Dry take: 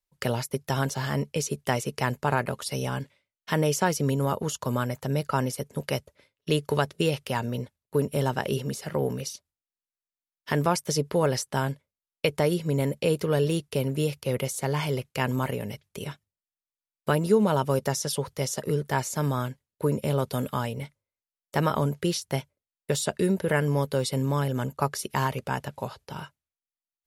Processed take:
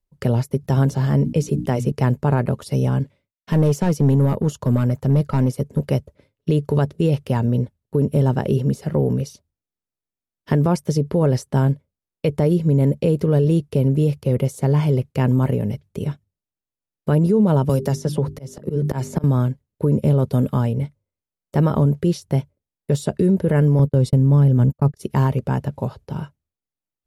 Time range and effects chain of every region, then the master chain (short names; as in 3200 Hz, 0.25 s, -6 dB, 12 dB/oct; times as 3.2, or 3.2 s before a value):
0.6–1.92 notches 60/120/180/240/300 Hz + sustainer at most 140 dB/s
2.98–5.9 gate with hold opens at -54 dBFS, closes at -60 dBFS + hard clip -22 dBFS
17.69–19.24 notches 50/100/150/200/250/300/350/400 Hz + auto swell 0.702 s + three-band squash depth 100%
23.79–25.01 low shelf 240 Hz +8.5 dB + gate -31 dBFS, range -41 dB
whole clip: tilt shelf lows +9.5 dB, about 630 Hz; limiter -13.5 dBFS; gain +4.5 dB